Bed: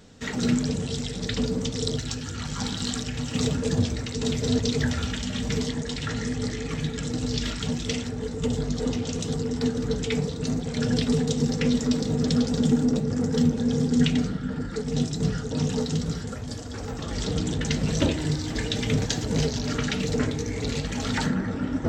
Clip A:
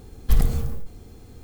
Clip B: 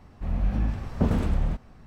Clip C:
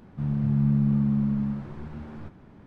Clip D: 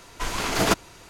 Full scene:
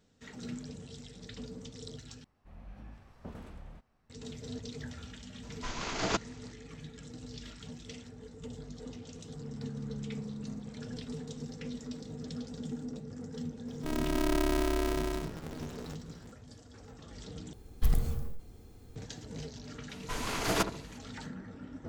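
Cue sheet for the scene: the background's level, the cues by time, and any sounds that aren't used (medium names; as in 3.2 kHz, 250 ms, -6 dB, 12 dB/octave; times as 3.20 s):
bed -18 dB
2.24 s: replace with B -17 dB + bass shelf 350 Hz -7.5 dB
5.43 s: add D -10 dB + careless resampling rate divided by 3×, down none, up filtered
9.17 s: add C -15.5 dB + bass shelf 130 Hz -7.5 dB
13.66 s: add C -6.5 dB + polarity switched at an audio rate 160 Hz
17.53 s: replace with A -8.5 dB
19.89 s: add D -8 dB + filtered feedback delay 70 ms, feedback 43%, low-pass 920 Hz, level -8 dB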